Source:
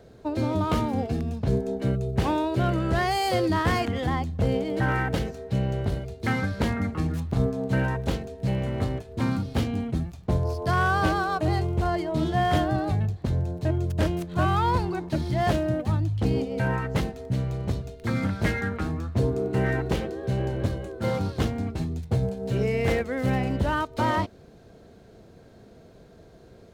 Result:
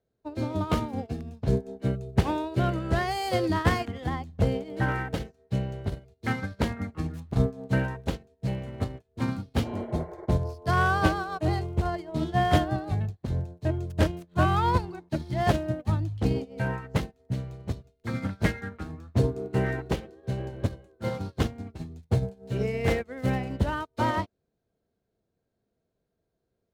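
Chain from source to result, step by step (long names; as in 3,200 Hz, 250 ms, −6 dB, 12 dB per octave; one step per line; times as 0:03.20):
healed spectral selection 0:09.66–0:10.25, 330–2,300 Hz after
expander for the loud parts 2.5 to 1, over −41 dBFS
level +3.5 dB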